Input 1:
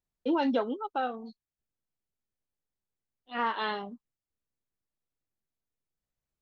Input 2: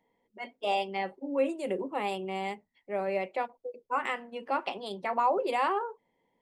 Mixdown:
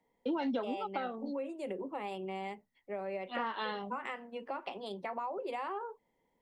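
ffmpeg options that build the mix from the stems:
-filter_complex "[0:a]volume=0.944[s0];[1:a]highshelf=f=3900:g=-6.5,acompressor=threshold=0.0251:ratio=4,volume=0.75[s1];[s0][s1]amix=inputs=2:normalize=0,acrossover=split=170[s2][s3];[s3]acompressor=threshold=0.02:ratio=3[s4];[s2][s4]amix=inputs=2:normalize=0"

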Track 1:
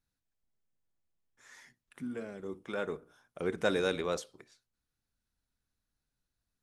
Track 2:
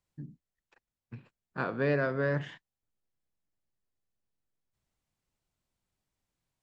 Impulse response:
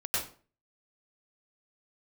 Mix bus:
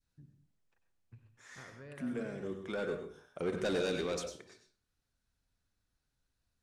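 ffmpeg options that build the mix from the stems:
-filter_complex "[0:a]lowpass=9700,asoftclip=type=tanh:threshold=0.0376,volume=1,asplit=2[s0][s1];[s1]volume=0.316[s2];[1:a]lowshelf=f=130:t=q:w=1.5:g=10,acompressor=threshold=0.0141:ratio=2.5,volume=0.158,asplit=2[s3][s4];[s4]volume=0.224[s5];[2:a]atrim=start_sample=2205[s6];[s2][s5]amix=inputs=2:normalize=0[s7];[s7][s6]afir=irnorm=-1:irlink=0[s8];[s0][s3][s8]amix=inputs=3:normalize=0,adynamicequalizer=threshold=0.00355:dfrequency=1000:dqfactor=0.78:tfrequency=1000:tqfactor=0.78:attack=5:release=100:ratio=0.375:range=3:mode=cutabove:tftype=bell"

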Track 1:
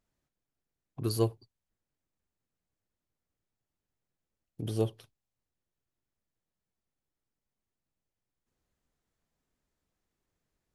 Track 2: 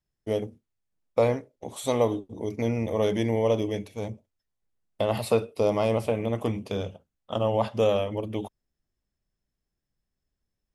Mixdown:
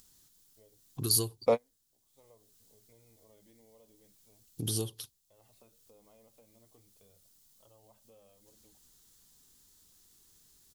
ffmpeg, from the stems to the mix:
-filter_complex "[0:a]equalizer=f=620:t=o:w=0.41:g=-11,acompressor=threshold=0.0224:ratio=6,aexciter=amount=5.1:drive=5.2:freq=3300,volume=1.26,asplit=2[s0][s1];[1:a]flanger=delay=1.5:depth=2.6:regen=-44:speed=0.43:shape=sinusoidal,adelay=300,volume=1.06[s2];[s1]apad=whole_len=486973[s3];[s2][s3]sidechaingate=range=0.00891:threshold=0.001:ratio=16:detection=peak[s4];[s0][s4]amix=inputs=2:normalize=0,acompressor=mode=upward:threshold=0.00224:ratio=2.5"

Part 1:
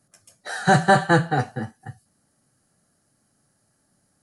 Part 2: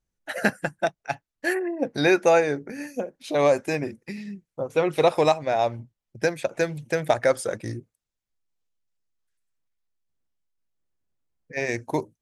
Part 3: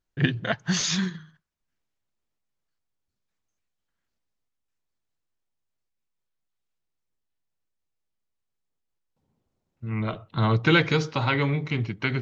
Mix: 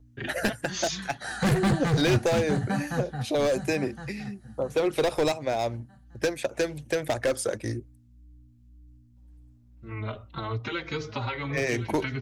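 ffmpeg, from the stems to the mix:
-filter_complex "[0:a]lowshelf=f=260:t=q:w=3:g=9,adelay=750,volume=0.668,asplit=2[s0][s1];[s1]volume=0.251[s2];[1:a]volume=1.26[s3];[2:a]acompressor=threshold=0.0447:ratio=4,aeval=exprs='val(0)+0.00316*(sin(2*PI*60*n/s)+sin(2*PI*2*60*n/s)/2+sin(2*PI*3*60*n/s)/3+sin(2*PI*4*60*n/s)/4+sin(2*PI*5*60*n/s)/5)':c=same,asplit=2[s4][s5];[s5]adelay=4.2,afreqshift=-1.9[s6];[s4][s6]amix=inputs=2:normalize=1,volume=1.26,asplit=2[s7][s8];[s8]volume=0.2[s9];[s2][s9]amix=inputs=2:normalize=0,aecho=0:1:1064|2128|3192|4256|5320:1|0.32|0.102|0.0328|0.0105[s10];[s0][s3][s7][s10]amix=inputs=4:normalize=0,volume=5.62,asoftclip=hard,volume=0.178,equalizer=f=170:t=o:w=0.35:g=-11.5,acrossover=split=420|3000[s11][s12][s13];[s12]acompressor=threshold=0.0398:ratio=6[s14];[s11][s14][s13]amix=inputs=3:normalize=0"

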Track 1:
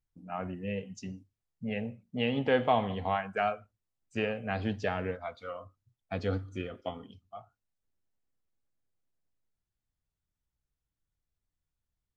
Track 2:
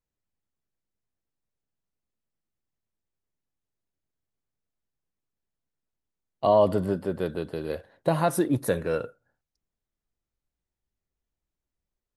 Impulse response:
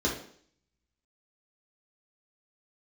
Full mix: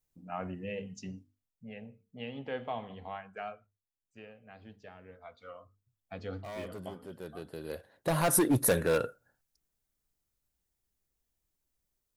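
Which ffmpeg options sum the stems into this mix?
-filter_complex "[0:a]bandreject=f=50:t=h:w=6,bandreject=f=100:t=h:w=6,bandreject=f=150:t=h:w=6,bandreject=f=200:t=h:w=6,bandreject=f=250:t=h:w=6,bandreject=f=300:t=h:w=6,bandreject=f=350:t=h:w=6,bandreject=f=400:t=h:w=6,bandreject=f=450:t=h:w=6,volume=3.35,afade=t=out:st=1.25:d=0.3:silence=0.316228,afade=t=out:st=3.66:d=0.22:silence=0.398107,afade=t=in:st=5.07:d=0.34:silence=0.266073,asplit=2[s0][s1];[1:a]adynamicequalizer=threshold=0.00891:dfrequency=1600:dqfactor=2.6:tfrequency=1600:tqfactor=2.6:attack=5:release=100:ratio=0.375:range=2:mode=boostabove:tftype=bell,asoftclip=type=hard:threshold=0.0891,highshelf=f=6000:g=12,volume=1.06[s2];[s1]apad=whole_len=536383[s3];[s2][s3]sidechaincompress=threshold=0.00158:ratio=6:attack=7.5:release=1120[s4];[s0][s4]amix=inputs=2:normalize=0"

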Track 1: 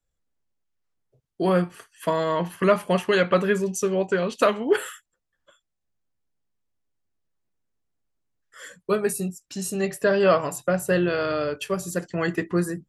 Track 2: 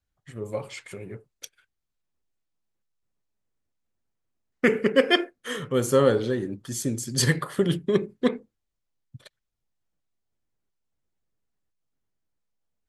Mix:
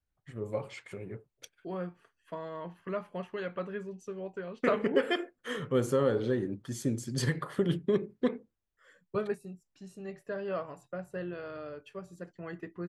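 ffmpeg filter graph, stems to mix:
-filter_complex "[0:a]highshelf=f=7900:g=-10.5,adelay=250,volume=0.355[s0];[1:a]alimiter=limit=0.211:level=0:latency=1:release=218,volume=0.708,asplit=2[s1][s2];[s2]apad=whole_len=579043[s3];[s0][s3]sidechaingate=range=0.447:threshold=0.00126:ratio=16:detection=peak[s4];[s4][s1]amix=inputs=2:normalize=0,highshelf=f=3900:g=-10.5"

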